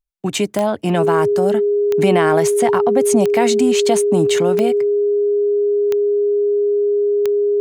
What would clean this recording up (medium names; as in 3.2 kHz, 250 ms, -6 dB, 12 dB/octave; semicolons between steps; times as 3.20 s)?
de-click; band-stop 410 Hz, Q 30